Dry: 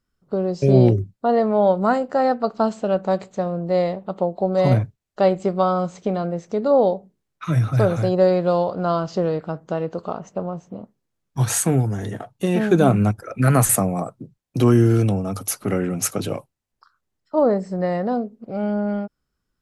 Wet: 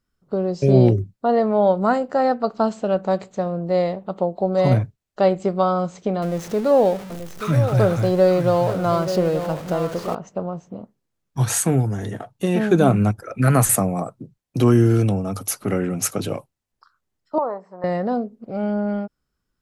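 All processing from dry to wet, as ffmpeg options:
-filter_complex "[0:a]asettb=1/sr,asplit=3[s0][s1][s2];[s0]atrim=end=6.224[s3];[s1]atrim=start=6.22:end=10.15,asetpts=PTS-STARTPTS,afade=t=in:d=0.004:c=qsin,afade=t=out:st=3.926:d=0.004:c=qsin,aeval=exprs='val(0)+0.5*0.0282*sgn(val(0))':c=same,aecho=1:1:881:0.316,atrim=end_sample=173313[s4];[s2]atrim=start=10.146[s5];[s3][s4]acrossfade=d=0.004:c1=hsin:c2=qsin[s6];[s6][s5]acrossfade=d=0.004:c1=qsin:c2=hsin,asettb=1/sr,asplit=3[s7][s8][s9];[s7]atrim=end=17.384[s10];[s8]atrim=start=17.38:end=17.84,asetpts=PTS-STARTPTS,afade=t=in:d=0.004:c=qsin,afade=t=out:st=0.456:d=0.004:c=qsin,bandpass=f=1000:t=q:w=3.9,acontrast=39[s11];[s9]atrim=start=17.836[s12];[s10][s11]acrossfade=d=0.004:c1=hsin:c2=qsin[s13];[s13][s12]acrossfade=d=0.004:c1=qsin:c2=hsin"

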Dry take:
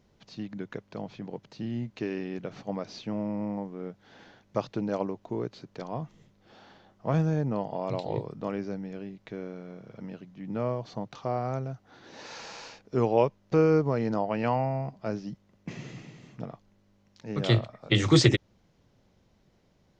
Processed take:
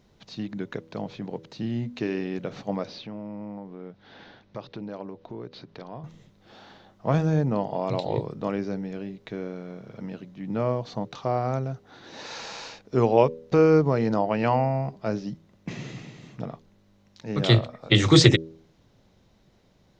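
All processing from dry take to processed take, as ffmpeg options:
-filter_complex "[0:a]asettb=1/sr,asplit=3[s0][s1][s2];[s0]atrim=end=2.874[s3];[s1]atrim=start=2.87:end=6.04,asetpts=PTS-STARTPTS,afade=t=in:d=0.004:c=qsin,afade=t=out:st=3.166:d=0.004:c=qsin,lowpass=f=5100:w=0.5412,lowpass=f=5100:w=1.3066,acompressor=threshold=0.00562:ratio=2:attack=3.2:release=140:knee=1:detection=peak[s4];[s2]atrim=start=6.036[s5];[s3][s4]acrossfade=d=0.004:c1=hsin:c2=qsin[s6];[s6][s5]acrossfade=d=0.004:c1=qsin:c2=hsin,equalizer=f=3800:w=7:g=5,bandreject=f=80.7:t=h:w=4,bandreject=f=161.4:t=h:w=4,bandreject=f=242.1:t=h:w=4,bandreject=f=322.8:t=h:w=4,bandreject=f=403.5:t=h:w=4,bandreject=f=484.2:t=h:w=4,bandreject=f=564.9:t=h:w=4,volume=1.68"

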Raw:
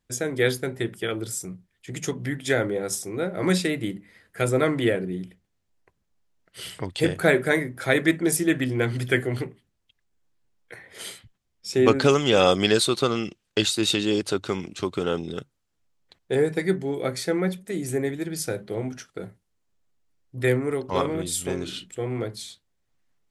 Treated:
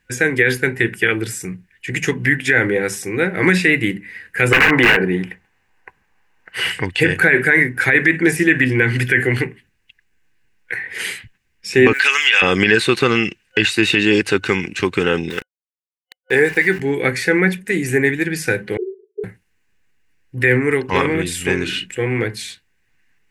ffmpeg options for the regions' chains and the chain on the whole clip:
-filter_complex "[0:a]asettb=1/sr,asplit=3[s0][s1][s2];[s0]atrim=end=4.514[s3];[s1]atrim=start=4.51:end=6.72,asetpts=PTS-STARTPTS,afade=t=in:d=0.004:c=qsin,afade=t=out:st=2.206:d=0.004:c=qsin,equalizer=f=880:t=o:w=1.7:g=14.5,aeval=exprs='(mod(3.76*val(0)+1,2)-1)/3.76':c=same[s4];[s2]atrim=start=6.716[s5];[s3][s4]acrossfade=d=0.004:c1=hsin:c2=qsin[s6];[s6][s5]acrossfade=d=0.004:c1=qsin:c2=hsin,asettb=1/sr,asplit=3[s7][s8][s9];[s7]atrim=end=11.934[s10];[s8]atrim=start=11.93:end=12.42,asetpts=PTS-STARTPTS,afade=t=in:d=0.004:c=qsin,afade=t=out:st=0.486:d=0.004:c=qsin,highpass=1500,highshelf=f=3200:g=9.5,acrusher=bits=9:dc=4:mix=0:aa=0.000001[s11];[s9]atrim=start=12.416[s12];[s10][s11]acrossfade=d=0.004:c1=hsin:c2=qsin[s13];[s13][s12]acrossfade=d=0.004:c1=qsin:c2=hsin,asettb=1/sr,asplit=3[s14][s15][s16];[s14]atrim=end=15.304[s17];[s15]atrim=start=15.3:end=16.8,asetpts=PTS-STARTPTS,afade=t=in:d=0.004:c=qsin,afade=t=out:st=1.496:d=0.004:c=qsin,lowshelf=f=230:g=-10,aeval=exprs='val(0)*gte(abs(val(0)),0.00891)':c=same[s18];[s16]atrim=start=16.796[s19];[s17][s18]acrossfade=d=0.004:c1=hsin:c2=qsin[s20];[s20][s19]acrossfade=d=0.004:c1=qsin:c2=hsin,asettb=1/sr,asplit=3[s21][s22][s23];[s21]atrim=end=18.774[s24];[s22]atrim=start=18.77:end=19.24,asetpts=PTS-STARTPTS,afade=t=in:d=0.004:c=qsin,afade=t=out:st=0.466:d=0.004:c=qsin,asuperpass=centerf=400:order=12:qfactor=5,acontrast=32[s25];[s23]atrim=start=19.236[s26];[s24][s25]acrossfade=d=0.004:c1=hsin:c2=qsin[s27];[s27][s26]acrossfade=d=0.004:c1=qsin:c2=hsin,superequalizer=8b=0.398:11b=3.98:12b=3.55,acrossover=split=3000[s28][s29];[s29]acompressor=threshold=0.0224:ratio=4:attack=1:release=60[s30];[s28][s30]amix=inputs=2:normalize=0,alimiter=level_in=2.99:limit=0.891:release=50:level=0:latency=1,volume=0.891"

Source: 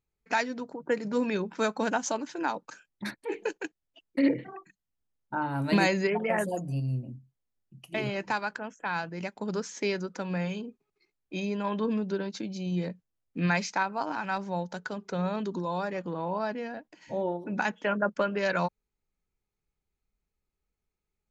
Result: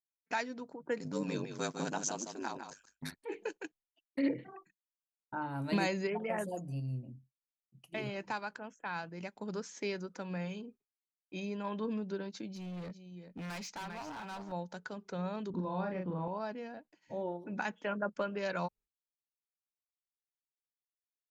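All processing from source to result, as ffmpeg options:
-filter_complex "[0:a]asettb=1/sr,asplit=3[s0][s1][s2];[s0]atrim=end=1.004[s3];[s1]atrim=start=1:end=3.16,asetpts=PTS-STARTPTS,afade=t=in:d=0.004:c=qsin,afade=t=out:st=2.156:d=0.004:c=qsin,bass=f=250:g=5,treble=f=4000:g=11,aecho=1:1:154:0.422,atrim=end_sample=95256,aeval=exprs='val(0)*sin(2*PI*49*n/s)':c=same[s4];[s2]atrim=start=3.156[s5];[s3][s4]acrossfade=d=0.004:c1=hsin:c2=qsin[s6];[s6][s5]acrossfade=d=0.004:c1=qsin:c2=hsin,asettb=1/sr,asplit=3[s7][s8][s9];[s7]atrim=end=12.484[s10];[s8]atrim=start=12.48:end=14.52,asetpts=PTS-STARTPTS,afade=t=in:d=0.004:c=qsin,afade=t=out:st=2.036:d=0.004:c=qsin,aecho=1:1:398:0.251,atrim=end_sample=89964,asoftclip=type=hard:threshold=0.0237[s11];[s9]atrim=start=14.516[s12];[s10][s11]acrossfade=d=0.004:c1=hsin:c2=qsin[s13];[s13][s12]acrossfade=d=0.004:c1=qsin:c2=hsin,asettb=1/sr,asplit=3[s14][s15][s16];[s14]atrim=end=15.504[s17];[s15]atrim=start=15.5:end=16.28,asetpts=PTS-STARTPTS,afade=t=in:d=0.004:c=qsin,afade=t=out:st=0.776:d=0.004:c=qsin,lowpass=f=5700:w=0.5412,lowpass=f=5700:w=1.3066,bass=f=250:g=8,treble=f=4000:g=-14,asplit=2[s18][s19];[s19]adelay=38,volume=0.631[s20];[s18][s20]amix=inputs=2:normalize=0,atrim=end_sample=34398[s21];[s16]atrim=start=16.276[s22];[s17][s21]acrossfade=d=0.004:c1=hsin:c2=qsin[s23];[s23][s22]acrossfade=d=0.004:c1=qsin:c2=hsin,agate=range=0.0224:threshold=0.00447:ratio=3:detection=peak,adynamicequalizer=threshold=0.00447:dfrequency=1800:dqfactor=2.4:tfrequency=1800:tqfactor=2.4:attack=5:release=100:ratio=0.375:range=2:mode=cutabove:tftype=bell,volume=0.422"

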